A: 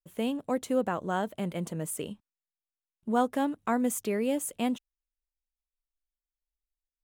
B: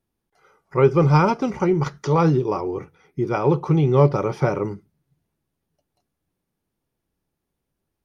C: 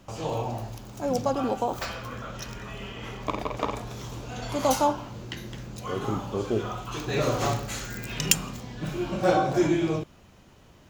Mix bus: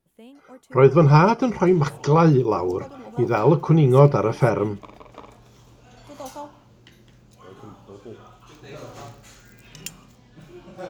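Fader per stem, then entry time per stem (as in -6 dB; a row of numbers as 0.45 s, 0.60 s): -16.0 dB, +2.0 dB, -13.5 dB; 0.00 s, 0.00 s, 1.55 s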